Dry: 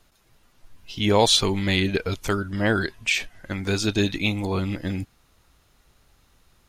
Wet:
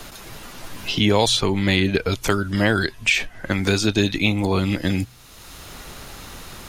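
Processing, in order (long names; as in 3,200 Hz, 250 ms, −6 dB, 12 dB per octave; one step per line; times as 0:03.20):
hum removal 61.86 Hz, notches 2
multiband upward and downward compressor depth 70%
level +3.5 dB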